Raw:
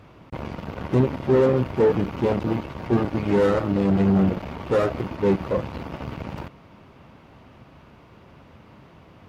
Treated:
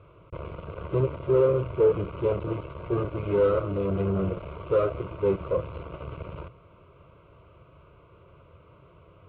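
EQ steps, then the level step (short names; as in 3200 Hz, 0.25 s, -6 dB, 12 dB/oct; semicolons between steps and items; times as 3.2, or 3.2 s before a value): air absorption 450 m; notches 60/120 Hz; fixed phaser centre 1200 Hz, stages 8; 0.0 dB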